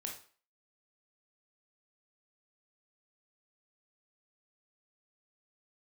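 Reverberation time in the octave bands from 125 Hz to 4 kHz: 0.30, 0.40, 0.40, 0.45, 0.40, 0.40 s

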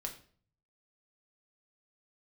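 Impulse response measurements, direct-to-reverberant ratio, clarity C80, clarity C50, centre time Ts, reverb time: 1.5 dB, 15.0 dB, 10.5 dB, 14 ms, 0.45 s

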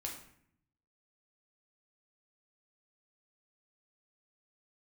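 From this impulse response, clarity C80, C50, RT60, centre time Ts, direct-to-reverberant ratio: 9.5 dB, 6.0 dB, 0.65 s, 29 ms, -1.0 dB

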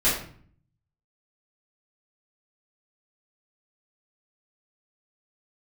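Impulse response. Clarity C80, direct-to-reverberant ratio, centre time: 8.0 dB, -11.5 dB, 42 ms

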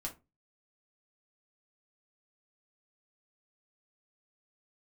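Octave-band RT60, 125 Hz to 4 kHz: 0.40, 0.35, 0.25, 0.25, 0.20, 0.15 s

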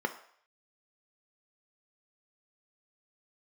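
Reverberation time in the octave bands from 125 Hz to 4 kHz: 0.35, 0.40, 0.60, 0.60, 0.60, 0.60 s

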